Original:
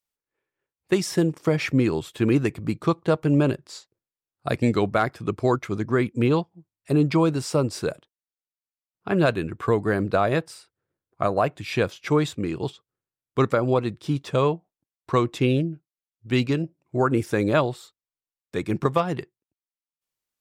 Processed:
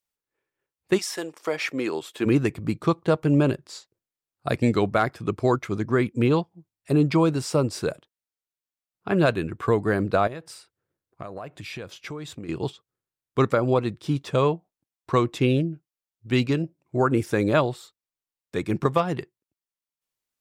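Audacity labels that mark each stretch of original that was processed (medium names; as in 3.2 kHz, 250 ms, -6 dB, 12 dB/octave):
0.970000	2.250000	high-pass 810 Hz -> 280 Hz
10.270000	12.490000	compression, threshold -33 dBFS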